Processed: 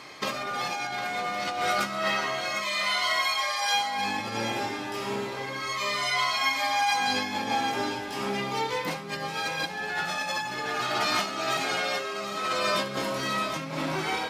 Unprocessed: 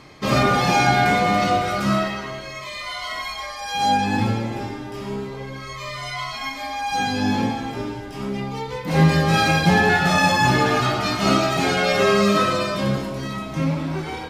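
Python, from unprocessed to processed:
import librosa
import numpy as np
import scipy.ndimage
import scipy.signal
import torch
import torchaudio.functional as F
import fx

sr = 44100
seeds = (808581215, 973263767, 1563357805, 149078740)

p1 = fx.room_flutter(x, sr, wall_m=11.8, rt60_s=0.22)
p2 = fx.over_compress(p1, sr, threshold_db=-25.0, ratio=-1.0)
p3 = fx.highpass(p2, sr, hz=780.0, slope=6)
y = p3 + fx.echo_single(p3, sr, ms=756, db=-10.5, dry=0)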